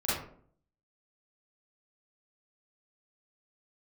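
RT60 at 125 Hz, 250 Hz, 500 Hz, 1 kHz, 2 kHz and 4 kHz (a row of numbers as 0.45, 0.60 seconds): 0.70, 0.70, 0.60, 0.50, 0.40, 0.30 seconds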